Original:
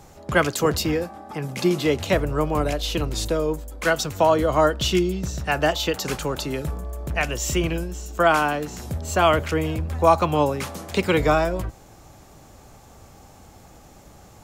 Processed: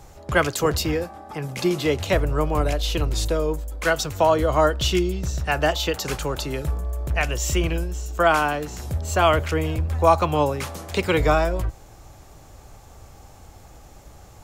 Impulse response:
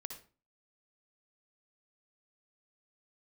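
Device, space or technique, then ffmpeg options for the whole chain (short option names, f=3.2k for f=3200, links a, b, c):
low shelf boost with a cut just above: -af "lowshelf=f=82:g=8,equalizer=f=210:t=o:w=0.96:g=-5.5"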